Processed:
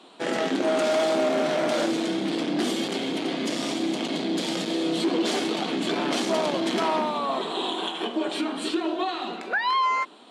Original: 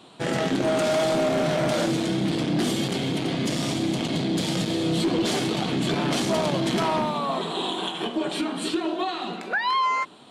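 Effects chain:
high-pass filter 230 Hz 24 dB per octave
high-shelf EQ 11,000 Hz −10 dB

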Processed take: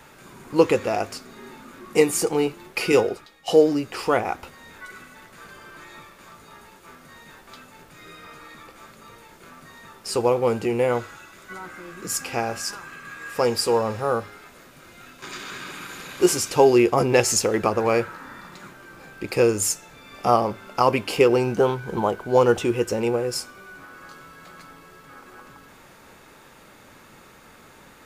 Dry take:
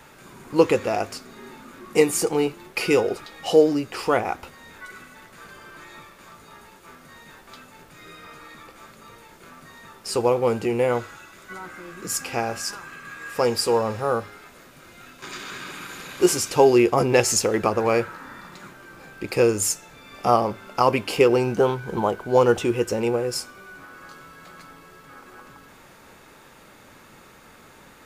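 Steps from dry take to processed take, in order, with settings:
0:02.92–0:03.48: multiband upward and downward expander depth 100%

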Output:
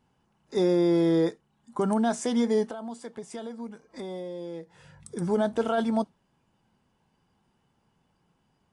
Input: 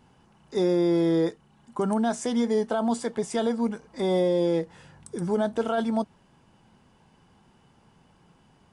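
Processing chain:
noise reduction from a noise print of the clip's start 11 dB
0:02.65–0:05.17: downward compressor 3 to 1, threshold −39 dBFS, peak gain reduction 14 dB

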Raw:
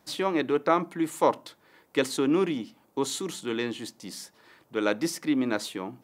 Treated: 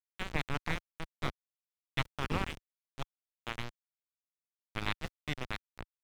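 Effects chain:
turntable brake at the end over 0.38 s
drawn EQ curve 650 Hz 0 dB, 4,200 Hz +5 dB, 9,500 Hz −22 dB, 13,000 Hz +4 dB
gate on every frequency bin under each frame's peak −15 dB weak
centre clipping without the shift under −30 dBFS
RIAA equalisation playback
level +1.5 dB

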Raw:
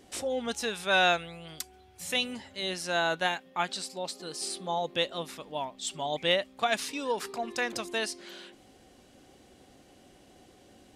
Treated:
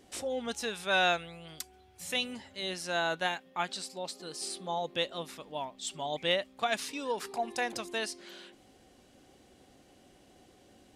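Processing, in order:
0:07.31–0:07.74: thirty-one-band graphic EQ 800 Hz +11 dB, 1,250 Hz −5 dB, 10,000 Hz +8 dB
level −3 dB

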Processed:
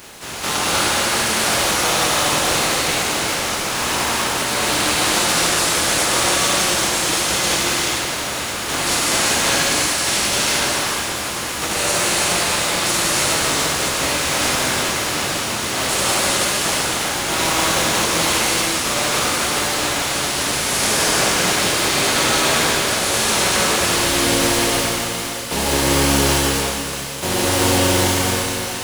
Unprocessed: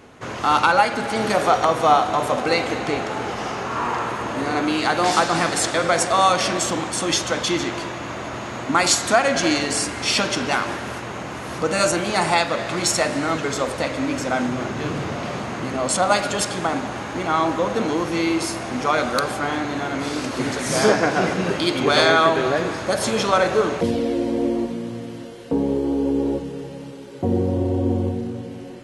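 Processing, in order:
compressing power law on the bin magnitudes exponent 0.29
reversed playback
upward compression, threshold −24 dBFS
reversed playback
brickwall limiter −10.5 dBFS, peak gain reduction 11 dB
reverb whose tail is shaped and stops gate 450 ms flat, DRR −7 dB
level −3 dB

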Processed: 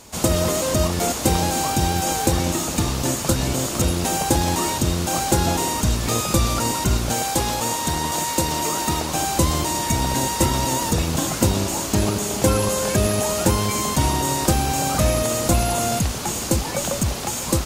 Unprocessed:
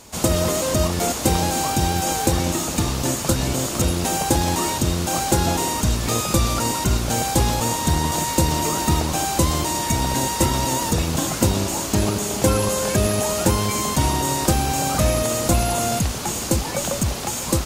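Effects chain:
0:07.13–0:09.14: low-shelf EQ 210 Hz −9 dB

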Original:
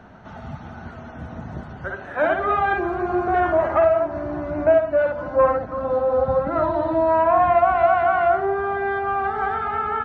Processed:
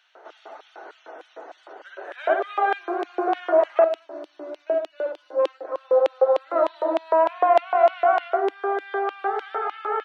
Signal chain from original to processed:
auto-filter high-pass square 3.3 Hz 450–3,100 Hz
elliptic high-pass filter 310 Hz, stop band 40 dB
0:03.84–0:05.65: flat-topped bell 1,100 Hz −9 dB 2.6 octaves
level −2.5 dB

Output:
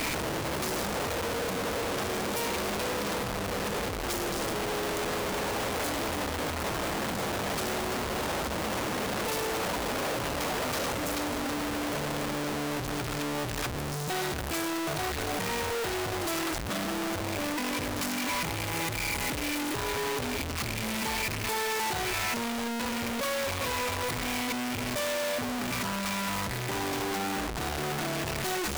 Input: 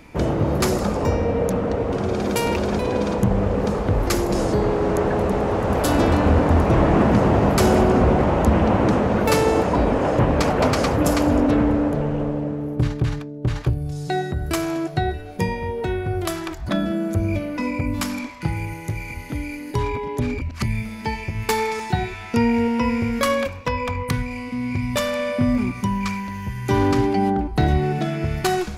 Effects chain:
sign of each sample alone
low-shelf EQ 260 Hz −7.5 dB
level −8.5 dB

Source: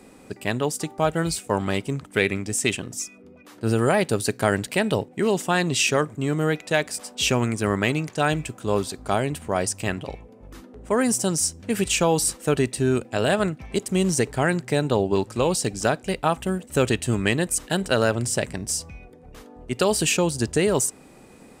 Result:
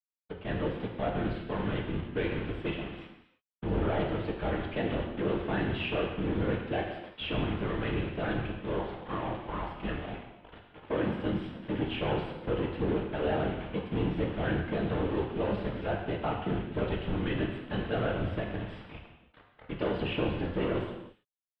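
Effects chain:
gain into a clipping stage and back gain 19.5 dB
parametric band 2,400 Hz −4.5 dB 2.9 octaves
bit-depth reduction 6 bits, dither none
random phases in short frames
0:08.79–0:09.74: ring modulation 440 Hz
elliptic low-pass filter 3,300 Hz, stop band 50 dB
reverb whose tail is shaped and stops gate 360 ms falling, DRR 0.5 dB
level −6.5 dB

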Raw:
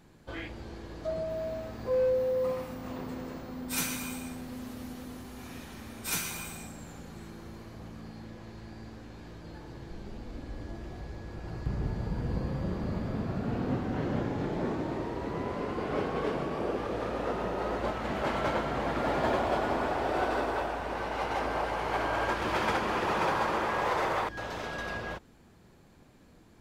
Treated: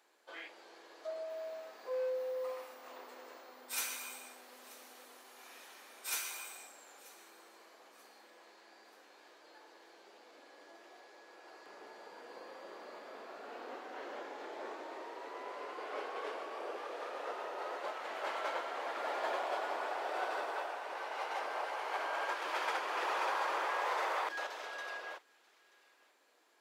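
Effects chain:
Bessel high-pass filter 630 Hz, order 6
on a send: delay with a high-pass on its return 934 ms, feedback 37%, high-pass 2,100 Hz, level −21 dB
0:22.97–0:24.47: on the sum: envelope flattener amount 50%
level −5 dB

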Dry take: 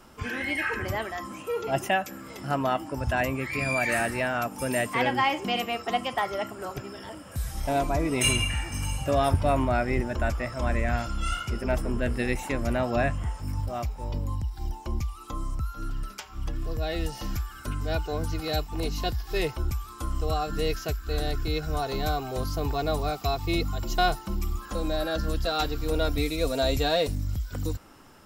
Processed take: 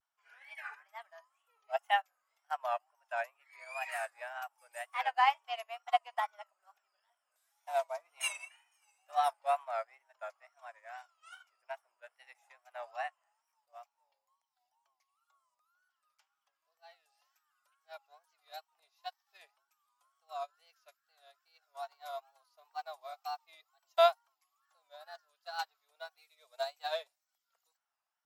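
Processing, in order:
elliptic high-pass filter 680 Hz, stop band 80 dB
dynamic equaliser 870 Hz, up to +5 dB, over −39 dBFS, Q 1.1
tape wow and flutter 120 cents
expander for the loud parts 2.5 to 1, over −38 dBFS
level −3 dB

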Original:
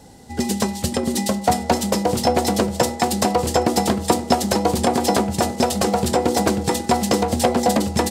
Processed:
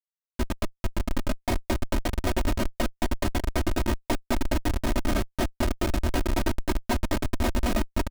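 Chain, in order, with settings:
comparator with hysteresis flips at −13.5 dBFS
comb filter 3.2 ms, depth 93%
level −6 dB

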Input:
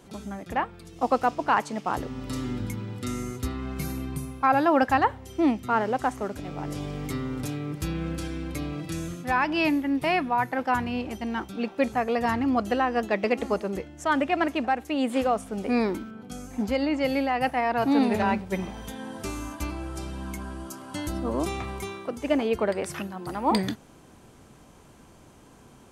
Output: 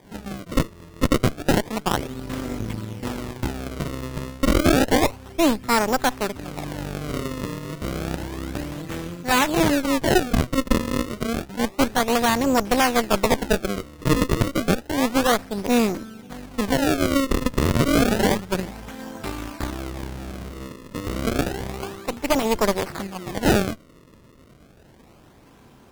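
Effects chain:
sample-and-hold swept by an LFO 32×, swing 160% 0.3 Hz
harmonic generator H 6 −10 dB, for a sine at −9 dBFS
level +1.5 dB

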